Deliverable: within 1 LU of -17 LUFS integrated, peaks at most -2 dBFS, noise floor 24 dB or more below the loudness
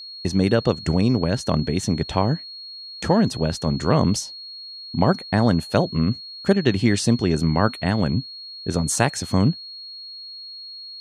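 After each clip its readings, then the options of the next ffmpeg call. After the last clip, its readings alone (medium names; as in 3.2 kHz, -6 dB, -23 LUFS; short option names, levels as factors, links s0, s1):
steady tone 4.3 kHz; tone level -35 dBFS; loudness -21.5 LUFS; peak level -3.0 dBFS; loudness target -17.0 LUFS
-> -af "bandreject=f=4300:w=30"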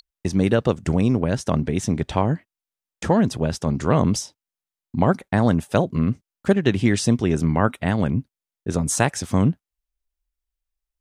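steady tone not found; loudness -21.5 LUFS; peak level -3.0 dBFS; loudness target -17.0 LUFS
-> -af "volume=1.68,alimiter=limit=0.794:level=0:latency=1"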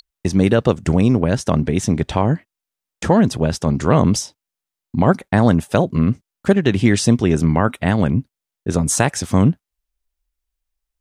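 loudness -17.5 LUFS; peak level -2.0 dBFS; noise floor -86 dBFS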